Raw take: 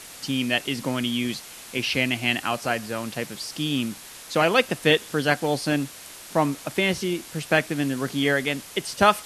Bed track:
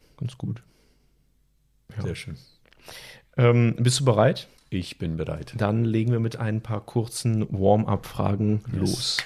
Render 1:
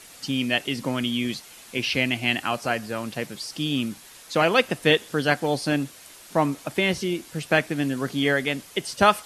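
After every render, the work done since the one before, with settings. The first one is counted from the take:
broadband denoise 6 dB, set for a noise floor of −43 dBFS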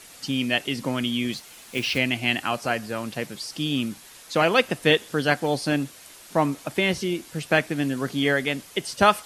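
0:01.33–0:02.00: one scale factor per block 5 bits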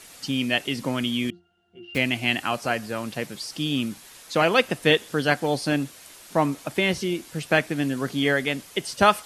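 0:01.30–0:01.95: resonances in every octave F, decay 0.28 s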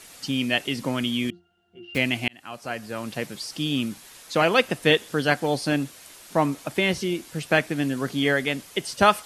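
0:02.28–0:03.16: fade in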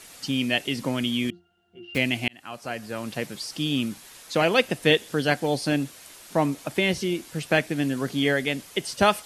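dynamic equaliser 1,200 Hz, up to −5 dB, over −36 dBFS, Q 1.6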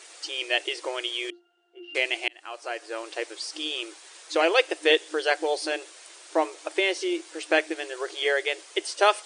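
brick-wall band-pass 310–9,800 Hz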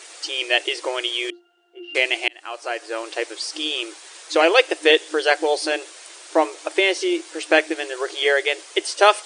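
level +6 dB
brickwall limiter −1 dBFS, peak gain reduction 1.5 dB

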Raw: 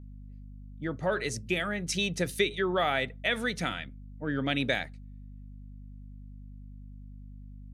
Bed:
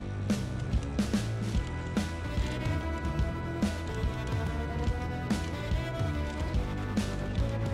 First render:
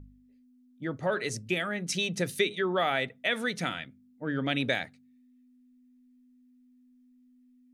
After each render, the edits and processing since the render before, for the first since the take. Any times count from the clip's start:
hum removal 50 Hz, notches 4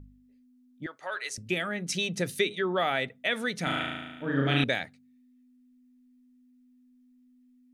0:00.86–0:01.38: high-pass filter 980 Hz
0:03.63–0:04.64: flutter between parallel walls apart 6.2 metres, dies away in 1.2 s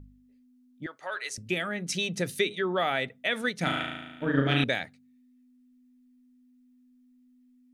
0:03.41–0:04.55: transient designer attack +6 dB, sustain −5 dB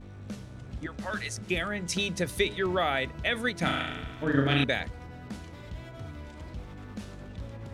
mix in bed −10 dB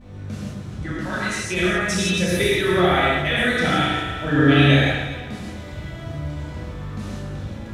delay that swaps between a low-pass and a high-pass 122 ms, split 2,100 Hz, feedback 55%, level −5 dB
reverb whose tail is shaped and stops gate 200 ms flat, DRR −7.5 dB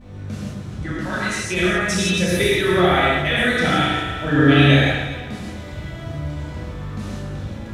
level +1.5 dB

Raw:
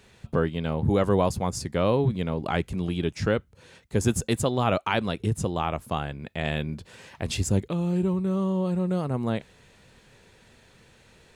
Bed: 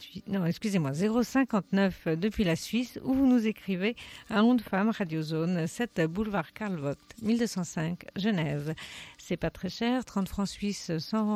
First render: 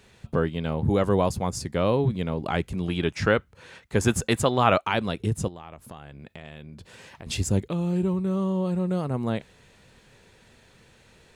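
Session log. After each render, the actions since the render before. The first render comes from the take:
0:02.89–0:04.81: parametric band 1,500 Hz +7.5 dB 2.5 octaves
0:05.48–0:07.27: downward compressor, threshold −38 dBFS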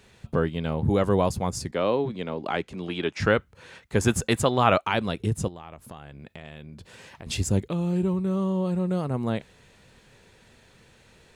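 0:01.71–0:03.20: three-way crossover with the lows and the highs turned down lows −15 dB, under 210 Hz, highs −13 dB, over 7,100 Hz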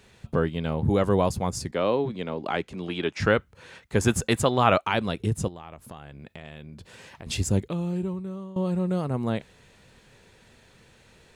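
0:07.56–0:08.56: fade out, to −17 dB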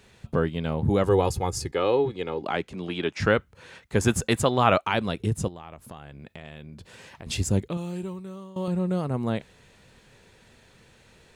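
0:01.06–0:02.42: comb filter 2.4 ms
0:07.77–0:08.68: spectral tilt +2 dB per octave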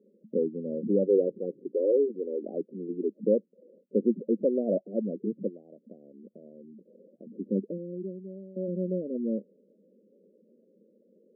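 elliptic band-pass filter 200–560 Hz, stop band 40 dB
gate on every frequency bin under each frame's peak −15 dB strong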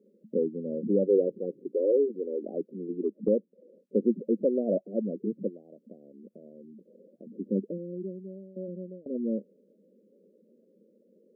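0:02.98–0:03.96: treble cut that deepens with the level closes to 660 Hz, closed at −24 dBFS
0:08.28–0:09.06: fade out, to −24 dB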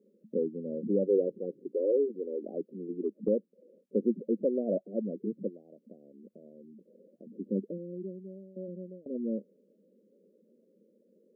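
level −3 dB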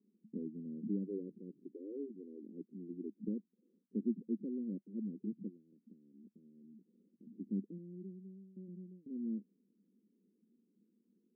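inverse Chebyshev low-pass filter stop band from 590 Hz, stop band 40 dB
spectral tilt +2 dB per octave

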